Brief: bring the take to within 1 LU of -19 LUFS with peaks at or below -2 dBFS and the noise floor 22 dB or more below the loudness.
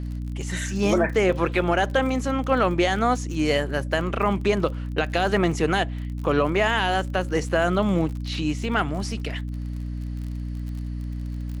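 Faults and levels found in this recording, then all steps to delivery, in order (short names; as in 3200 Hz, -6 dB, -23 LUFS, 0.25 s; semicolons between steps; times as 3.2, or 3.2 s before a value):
ticks 39/s; hum 60 Hz; harmonics up to 300 Hz; hum level -27 dBFS; loudness -24.5 LUFS; peak -8.5 dBFS; loudness target -19.0 LUFS
-> de-click; de-hum 60 Hz, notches 5; gain +5.5 dB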